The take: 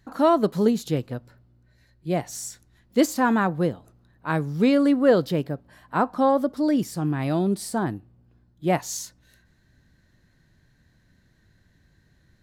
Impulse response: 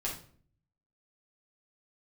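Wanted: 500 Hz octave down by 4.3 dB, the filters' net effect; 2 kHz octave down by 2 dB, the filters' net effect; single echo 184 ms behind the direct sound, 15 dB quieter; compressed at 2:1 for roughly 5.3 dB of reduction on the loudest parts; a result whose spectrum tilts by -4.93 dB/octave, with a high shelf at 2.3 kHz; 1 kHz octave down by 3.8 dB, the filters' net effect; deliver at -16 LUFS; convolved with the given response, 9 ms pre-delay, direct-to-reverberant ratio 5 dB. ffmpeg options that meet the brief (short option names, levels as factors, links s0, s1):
-filter_complex "[0:a]equalizer=f=500:t=o:g=-4.5,equalizer=f=1000:t=o:g=-3.5,equalizer=f=2000:t=o:g=-3.5,highshelf=f=2300:g=5.5,acompressor=threshold=0.0501:ratio=2,aecho=1:1:184:0.178,asplit=2[s0][s1];[1:a]atrim=start_sample=2205,adelay=9[s2];[s1][s2]afir=irnorm=-1:irlink=0,volume=0.376[s3];[s0][s3]amix=inputs=2:normalize=0,volume=3.98"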